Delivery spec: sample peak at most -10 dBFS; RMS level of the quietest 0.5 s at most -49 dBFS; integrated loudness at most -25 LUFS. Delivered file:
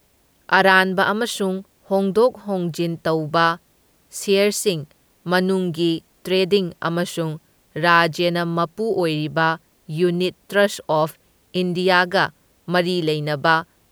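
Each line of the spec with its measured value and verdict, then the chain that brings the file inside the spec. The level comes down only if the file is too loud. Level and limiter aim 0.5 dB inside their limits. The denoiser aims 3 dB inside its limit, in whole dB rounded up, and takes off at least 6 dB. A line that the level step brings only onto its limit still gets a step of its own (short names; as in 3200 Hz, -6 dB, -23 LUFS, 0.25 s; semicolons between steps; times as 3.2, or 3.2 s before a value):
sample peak -1.5 dBFS: fail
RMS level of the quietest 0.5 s -59 dBFS: OK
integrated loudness -20.0 LUFS: fail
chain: gain -5.5 dB; limiter -10.5 dBFS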